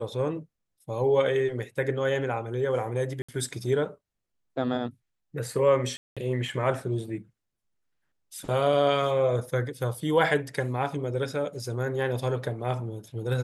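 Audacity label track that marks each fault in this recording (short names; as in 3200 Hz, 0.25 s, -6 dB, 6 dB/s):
3.220000	3.290000	gap 65 ms
5.970000	6.170000	gap 0.196 s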